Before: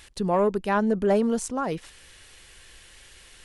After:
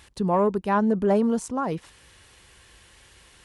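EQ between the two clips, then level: high-pass 60 Hz 12 dB/octave; bass shelf 380 Hz +8 dB; peaking EQ 990 Hz +6 dB 0.75 oct; -4.0 dB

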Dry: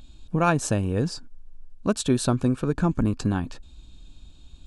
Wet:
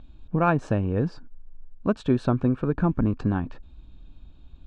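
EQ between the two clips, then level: low-pass 2 kHz 12 dB/octave; 0.0 dB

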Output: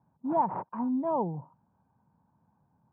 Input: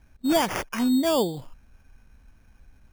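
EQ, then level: high-pass 100 Hz 24 dB/octave; four-pole ladder low-pass 1 kHz, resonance 75%; peaking EQ 160 Hz +12.5 dB 0.82 oct; 0.0 dB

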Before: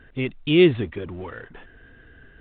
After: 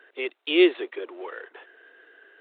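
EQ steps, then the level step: steep high-pass 350 Hz 48 dB/octave; 0.0 dB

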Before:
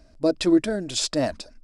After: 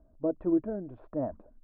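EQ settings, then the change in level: low-pass 1.1 kHz 24 dB/octave; distance through air 280 m; -7.5 dB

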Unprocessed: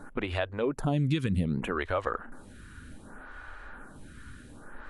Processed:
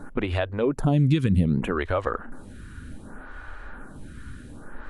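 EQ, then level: bass shelf 480 Hz +6 dB; +2.0 dB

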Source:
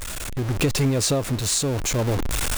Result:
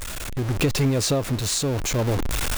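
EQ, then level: dynamic bell 8.6 kHz, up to -4 dB, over -38 dBFS, Q 1.4; 0.0 dB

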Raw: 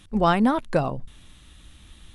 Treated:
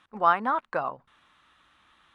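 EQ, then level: band-pass filter 1.2 kHz, Q 2; +3.5 dB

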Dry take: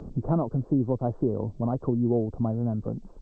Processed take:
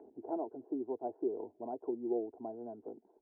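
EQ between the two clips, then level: ladder band-pass 510 Hz, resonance 65%; peaking EQ 450 Hz -8.5 dB 0.25 oct; static phaser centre 800 Hz, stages 8; +5.5 dB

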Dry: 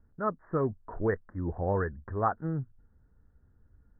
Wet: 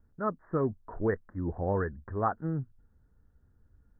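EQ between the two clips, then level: dynamic bell 250 Hz, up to +3 dB, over -42 dBFS, Q 1.1; -1.5 dB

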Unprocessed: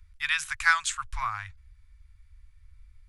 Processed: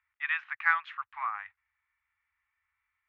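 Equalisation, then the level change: distance through air 120 m; cabinet simulation 480–2900 Hz, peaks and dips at 510 Hz +3 dB, 810 Hz +8 dB, 1.2 kHz +6 dB, 1.9 kHz +8 dB, 2.7 kHz +3 dB; -7.5 dB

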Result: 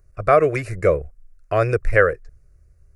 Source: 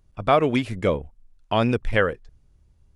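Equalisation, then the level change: static phaser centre 890 Hz, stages 6; +6.0 dB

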